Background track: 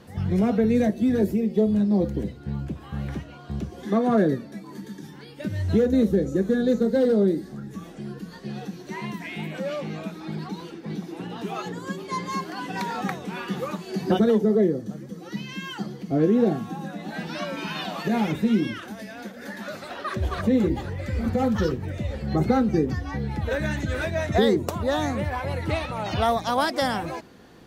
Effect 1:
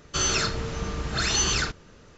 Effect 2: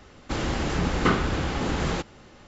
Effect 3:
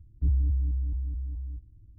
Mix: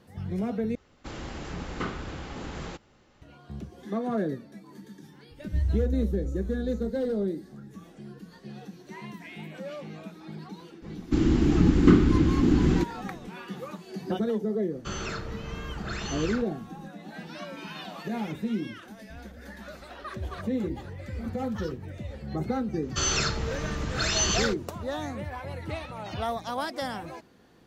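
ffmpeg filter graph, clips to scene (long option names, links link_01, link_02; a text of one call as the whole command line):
ffmpeg -i bed.wav -i cue0.wav -i cue1.wav -i cue2.wav -filter_complex "[2:a]asplit=2[link_01][link_02];[3:a]asplit=2[link_03][link_04];[1:a]asplit=2[link_05][link_06];[0:a]volume=-8.5dB[link_07];[link_02]lowshelf=frequency=430:width_type=q:width=3:gain=10.5[link_08];[link_05]equalizer=frequency=5700:width_type=o:width=1.7:gain=-11.5[link_09];[link_04]equalizer=frequency=66:width_type=o:width=0.77:gain=-11[link_10];[link_07]asplit=2[link_11][link_12];[link_11]atrim=end=0.754[link_13];[link_01]atrim=end=2.47,asetpts=PTS-STARTPTS,volume=-11dB[link_14];[link_12]atrim=start=3.216[link_15];[link_03]atrim=end=1.98,asetpts=PTS-STARTPTS,volume=-2dB,afade=type=in:duration=0.004:curve=hsin,afade=type=out:start_time=1.976:duration=0.004:curve=hsin,adelay=5310[link_16];[link_08]atrim=end=2.47,asetpts=PTS-STARTPTS,volume=-6.5dB,afade=type=in:duration=0.004:curve=hsin,afade=type=out:start_time=2.466:duration=0.004:curve=hsin,adelay=477162S[link_17];[link_09]atrim=end=2.17,asetpts=PTS-STARTPTS,volume=-6dB,afade=type=in:duration=0.004:curve=hsin,afade=type=out:start_time=2.166:duration=0.004:curve=hsin,adelay=14710[link_18];[link_10]atrim=end=1.98,asetpts=PTS-STARTPTS,volume=-14dB,afade=type=in:duration=0.004:curve=hsin,afade=type=out:start_time=1.976:duration=0.004:curve=hsin,adelay=18880[link_19];[link_06]atrim=end=2.17,asetpts=PTS-STARTPTS,volume=-2dB,afade=type=in:duration=0.004:curve=hsin,afade=type=out:start_time=2.166:duration=0.004:curve=hsin,adelay=22820[link_20];[link_13][link_14]acrossfade=duration=0.004:curve1=hsin:curve2=hsin[link_21];[link_21][link_15]acrossfade=duration=0.004:curve1=hsin:curve2=hsin[link_22];[link_22][link_16][link_17][link_18][link_19][link_20]amix=inputs=6:normalize=0" out.wav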